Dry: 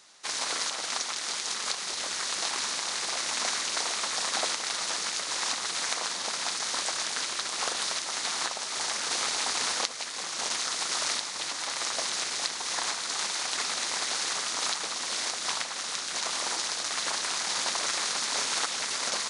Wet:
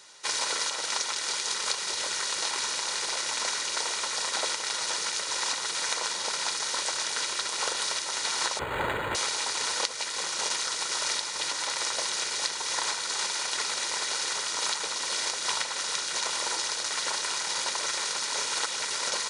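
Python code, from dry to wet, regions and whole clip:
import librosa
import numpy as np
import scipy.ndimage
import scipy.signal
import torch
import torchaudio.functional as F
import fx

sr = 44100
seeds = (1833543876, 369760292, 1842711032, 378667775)

y = fx.chain(x, sr, fx.lowpass(hz=6200.0, slope=24),
    fx.resample_linear(factor=8), at=(8.59, 9.15))
y = scipy.signal.sosfilt(scipy.signal.butter(2, 56.0, 'highpass', fs=sr, output='sos'), y)
y = y + 0.47 * np.pad(y, (int(2.1 * sr / 1000.0), 0))[:len(y)]
y = fx.rider(y, sr, range_db=10, speed_s=0.5)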